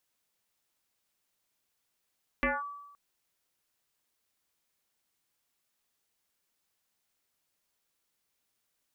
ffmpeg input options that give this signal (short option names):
-f lavfi -i "aevalsrc='0.0708*pow(10,-3*t/1)*sin(2*PI*1150*t+4.3*clip(1-t/0.2,0,1)*sin(2*PI*0.26*1150*t))':d=0.52:s=44100"